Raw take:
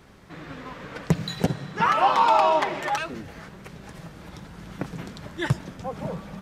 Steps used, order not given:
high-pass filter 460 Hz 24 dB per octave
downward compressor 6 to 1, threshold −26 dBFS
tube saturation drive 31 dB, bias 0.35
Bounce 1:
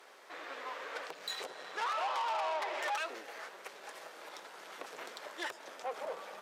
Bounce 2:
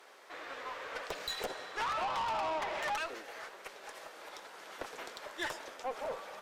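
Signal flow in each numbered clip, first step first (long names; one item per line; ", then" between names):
downward compressor, then tube saturation, then high-pass filter
high-pass filter, then downward compressor, then tube saturation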